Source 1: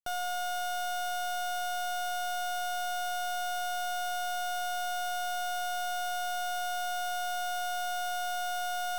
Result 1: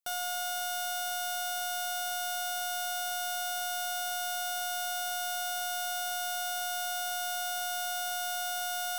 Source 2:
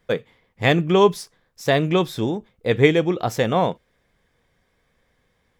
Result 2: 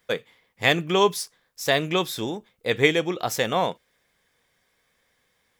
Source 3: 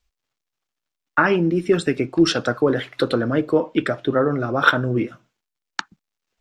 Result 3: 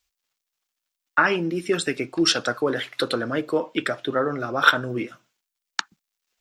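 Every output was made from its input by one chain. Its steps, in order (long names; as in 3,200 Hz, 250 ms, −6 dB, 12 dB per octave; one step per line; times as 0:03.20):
spectral tilt +2.5 dB per octave
level −2 dB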